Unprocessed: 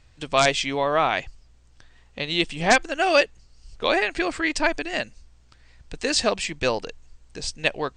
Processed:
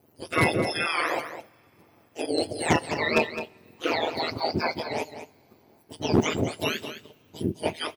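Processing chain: spectrum mirrored in octaves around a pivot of 1200 Hz; in parallel at -0.5 dB: level quantiser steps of 16 dB; on the sum: overloaded stage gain 10 dB; ring modulator 79 Hz; on a send: echo 0.211 s -11 dB; on the sum: two-slope reverb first 0.42 s, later 4 s, from -19 dB, DRR 18.5 dB; gain -2 dB

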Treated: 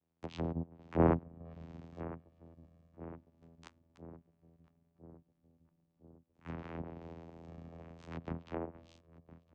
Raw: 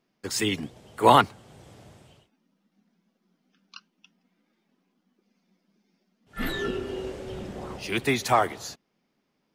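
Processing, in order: cycle switcher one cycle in 3, muted; Doppler pass-by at 2.52, 25 m/s, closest 18 m; comb 7.2 ms, depth 68%; vocoder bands 4, saw 83.1 Hz; on a send: darkening echo 1.009 s, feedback 66%, low-pass 870 Hz, level -16 dB; on the sum: treble ducked by the level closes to 830 Hz, closed at -36 dBFS

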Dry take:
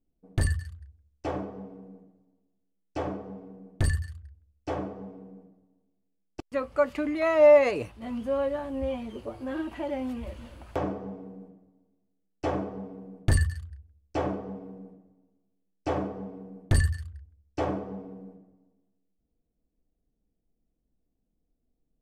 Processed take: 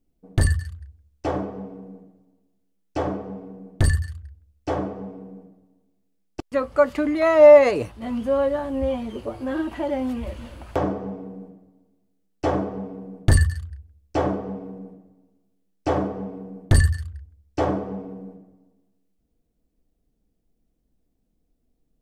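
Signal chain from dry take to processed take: dynamic EQ 2500 Hz, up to -5 dB, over -55 dBFS, Q 3.3; gain +6.5 dB

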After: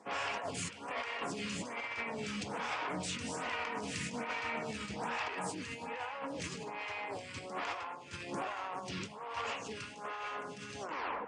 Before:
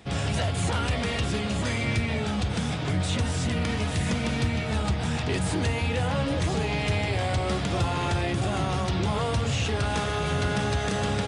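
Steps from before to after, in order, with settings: tape stop at the end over 0.47 s; speaker cabinet 310–8200 Hz, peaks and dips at 360 Hz -6 dB, 650 Hz -4 dB, 1000 Hz +7 dB, 2500 Hz +3 dB, 3700 Hz -8 dB; negative-ratio compressor -33 dBFS, ratio -0.5; band-limited delay 0.215 s, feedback 63%, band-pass 1500 Hz, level -10 dB; photocell phaser 1.2 Hz; gain -3.5 dB

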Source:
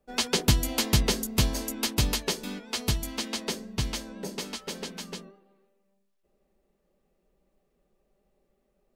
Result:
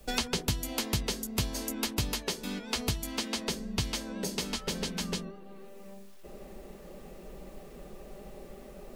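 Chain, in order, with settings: three-band squash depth 100%; gain -4.5 dB

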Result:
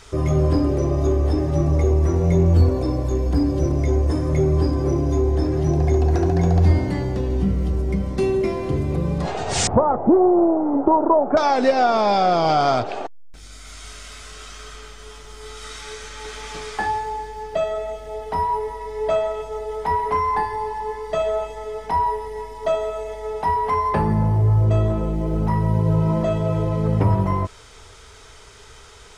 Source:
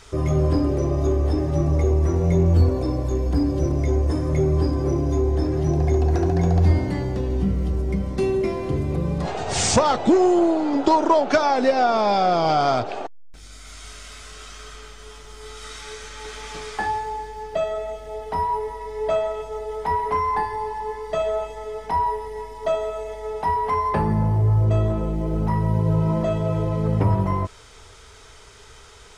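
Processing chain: 9.67–11.37 LPF 1100 Hz 24 dB/oct; gain +1.5 dB

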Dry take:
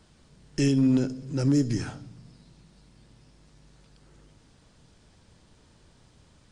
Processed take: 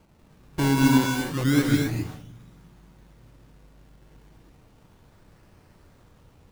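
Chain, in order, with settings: 1.75–2.16 Bessel low-pass 1200 Hz; decimation with a swept rate 24×, swing 100% 0.32 Hz; non-linear reverb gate 0.28 s rising, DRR 1 dB

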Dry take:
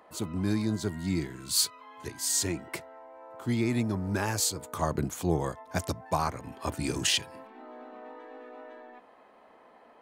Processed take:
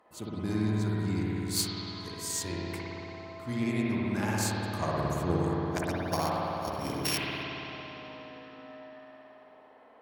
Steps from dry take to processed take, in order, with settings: 5.92–7.43 sample sorter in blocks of 8 samples; added harmonics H 3 -14 dB, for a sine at -11.5 dBFS; spring tank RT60 3.6 s, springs 56 ms, chirp 45 ms, DRR -5.5 dB

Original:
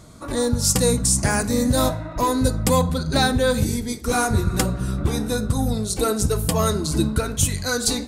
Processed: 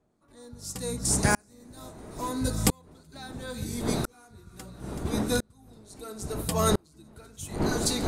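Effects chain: wind noise 380 Hz -25 dBFS; low shelf 150 Hz -3.5 dB; notch 530 Hz, Q 12; thin delay 0.379 s, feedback 77%, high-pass 2400 Hz, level -14.5 dB; dB-ramp tremolo swelling 0.74 Hz, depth 38 dB

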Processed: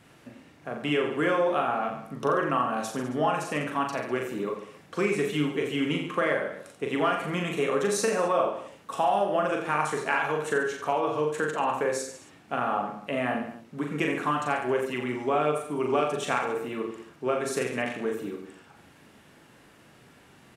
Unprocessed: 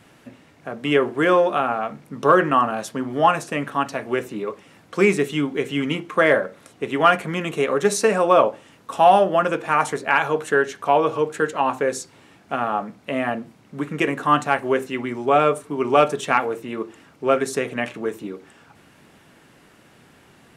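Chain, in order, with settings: compressor, threshold -18 dBFS, peak gain reduction 9.5 dB; reverse bouncing-ball echo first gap 40 ms, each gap 1.15×, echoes 5; gain -5 dB

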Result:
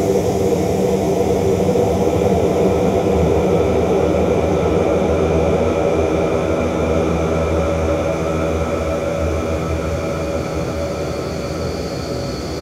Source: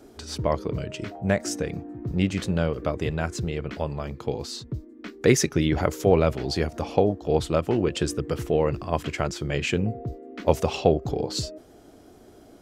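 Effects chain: doubler 16 ms -12 dB; diffused feedback echo 0.489 s, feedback 45%, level -9 dB; Paulstretch 33×, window 0.50 s, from 6.03; gain +3 dB

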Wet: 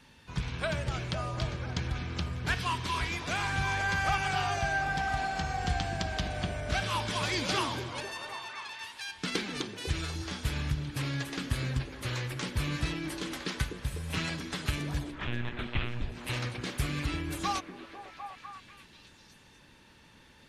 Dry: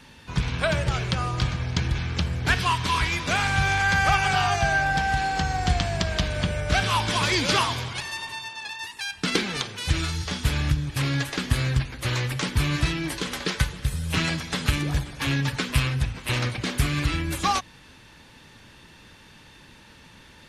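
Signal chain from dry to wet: 15.11–16.12 monotone LPC vocoder at 8 kHz 120 Hz; delay with a stepping band-pass 0.249 s, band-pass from 300 Hz, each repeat 0.7 oct, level -2 dB; gain -8.5 dB

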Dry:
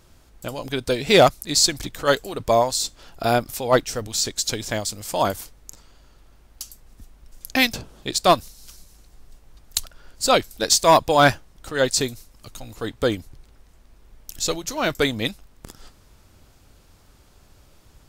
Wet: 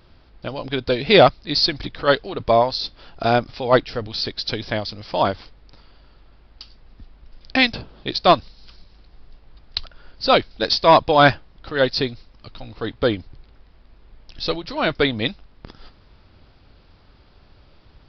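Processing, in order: downsampling 11025 Hz; gain +2 dB

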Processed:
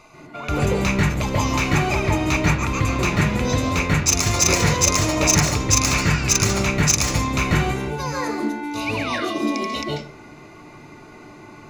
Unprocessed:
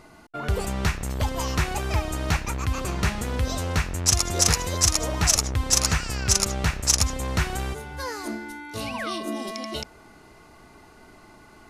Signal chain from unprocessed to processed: in parallel at -6.5 dB: wrapped overs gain 11.5 dB; on the sum: reverb RT60 0.40 s, pre-delay 0.135 s, DRR 0 dB; gain -6 dB

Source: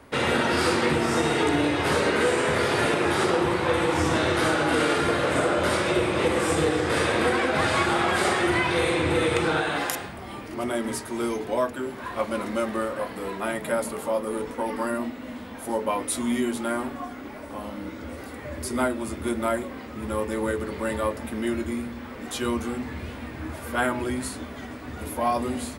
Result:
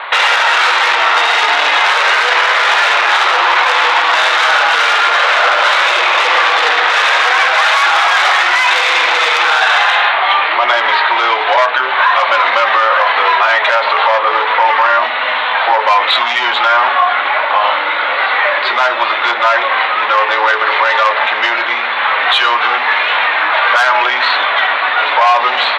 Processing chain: steep low-pass 4100 Hz 96 dB/oct; soft clip -23.5 dBFS, distortion -11 dB; compressor, threshold -30 dBFS, peak gain reduction 5 dB; HPF 810 Hz 24 dB/oct; maximiser +33 dB; gain -1 dB

